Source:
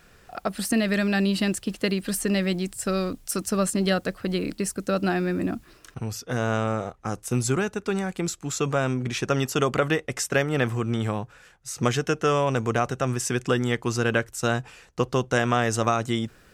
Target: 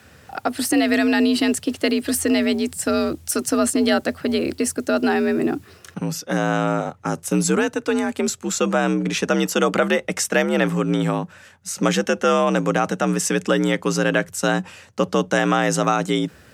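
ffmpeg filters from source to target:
-filter_complex "[0:a]asplit=2[a][b];[b]alimiter=limit=-16.5dB:level=0:latency=1:release=20,volume=-0.5dB[c];[a][c]amix=inputs=2:normalize=0,afreqshift=56"

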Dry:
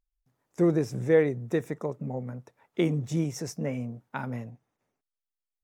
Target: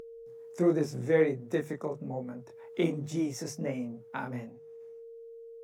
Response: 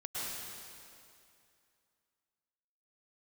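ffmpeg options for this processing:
-filter_complex "[0:a]flanger=delay=20:depth=6.1:speed=1.3,acrossover=split=130|800[a][b][c];[a]acompressor=threshold=-54dB:ratio=6[d];[d][b][c]amix=inputs=3:normalize=0,bandreject=f=50:t=h:w=6,bandreject=f=100:t=h:w=6,bandreject=f=150:t=h:w=6,aeval=exprs='val(0)+0.00224*sin(2*PI*460*n/s)':c=same,acompressor=mode=upward:threshold=-42dB:ratio=2.5,volume=1.5dB"

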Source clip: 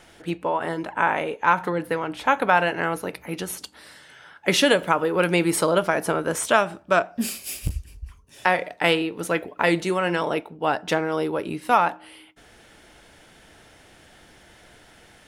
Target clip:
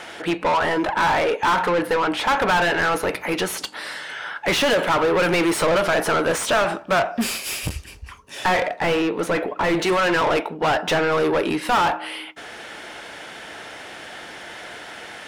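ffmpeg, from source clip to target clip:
-filter_complex "[0:a]asetnsamples=n=441:p=0,asendcmd='8.67 lowpass f 1300;9.81 lowpass f 2900',asplit=2[a][b];[b]highpass=f=720:p=1,volume=31dB,asoftclip=type=tanh:threshold=-4.5dB[c];[a][c]amix=inputs=2:normalize=0,lowpass=f=2.8k:p=1,volume=-6dB,volume=-6.5dB"

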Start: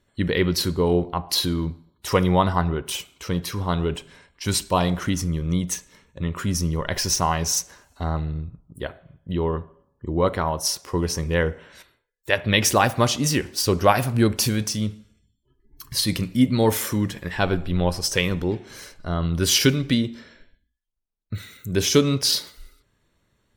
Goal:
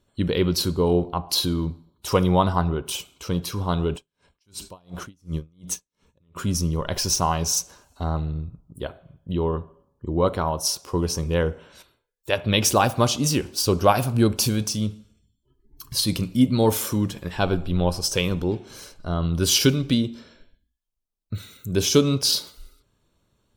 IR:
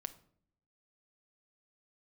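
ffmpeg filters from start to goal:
-filter_complex "[0:a]equalizer=f=1.9k:t=o:w=0.41:g=-11.5,asplit=3[a][b][c];[a]afade=t=out:st=3.96:d=0.02[d];[b]aeval=exprs='val(0)*pow(10,-39*(0.5-0.5*cos(2*PI*2.8*n/s))/20)':c=same,afade=t=in:st=3.96:d=0.02,afade=t=out:st=6.35:d=0.02[e];[c]afade=t=in:st=6.35:d=0.02[f];[d][e][f]amix=inputs=3:normalize=0"

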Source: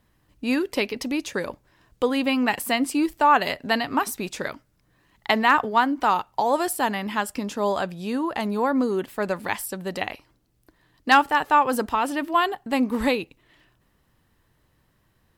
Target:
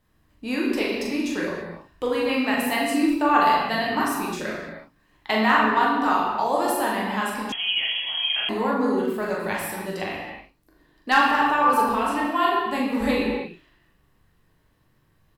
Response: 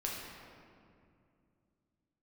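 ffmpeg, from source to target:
-filter_complex "[0:a]asplit=2[a][b];[b]adelay=41,volume=-5dB[c];[a][c]amix=inputs=2:normalize=0[d];[1:a]atrim=start_sample=2205,afade=t=out:st=0.38:d=0.01,atrim=end_sample=17199[e];[d][e]afir=irnorm=-1:irlink=0,asettb=1/sr,asplit=3[f][g][h];[f]atrim=end=7.524[i];[g]atrim=start=7.52:end=8.49,asetpts=PTS-STARTPTS,afade=t=in:d=0.004:c=qsin,afade=t=out:st=0.966:d=0.004:c=qsin,lowpass=f=3k:t=q:w=0.5098,lowpass=f=3k:t=q:w=0.6013,lowpass=f=3k:t=q:w=0.9,lowpass=f=3k:t=q:w=2.563,afreqshift=-3500[j];[h]atrim=start=8.486[k];[i][j]acrossfade=d=0.004:c1=hsin:c2=qsin[l];[l][k]acrossfade=d=0.004:c1=qsin:c2=hsin,volume=-3dB"

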